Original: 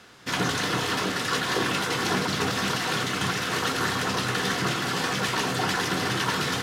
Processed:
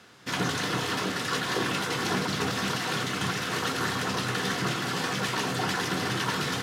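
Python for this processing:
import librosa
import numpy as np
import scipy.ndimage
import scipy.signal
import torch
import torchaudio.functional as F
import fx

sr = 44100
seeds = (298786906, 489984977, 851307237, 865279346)

y = scipy.signal.sosfilt(scipy.signal.butter(2, 100.0, 'highpass', fs=sr, output='sos'), x)
y = fx.low_shelf(y, sr, hz=140.0, db=5.5)
y = y * librosa.db_to_amplitude(-3.0)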